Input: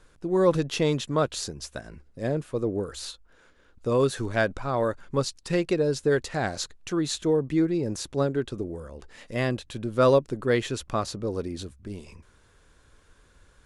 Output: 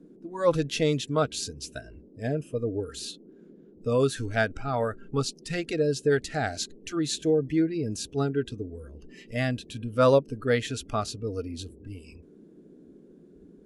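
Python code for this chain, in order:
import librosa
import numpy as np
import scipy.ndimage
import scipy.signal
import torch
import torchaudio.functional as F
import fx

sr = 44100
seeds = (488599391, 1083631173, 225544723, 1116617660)

y = fx.noise_reduce_blind(x, sr, reduce_db=17)
y = fx.dmg_noise_band(y, sr, seeds[0], low_hz=160.0, high_hz=420.0, level_db=-52.0)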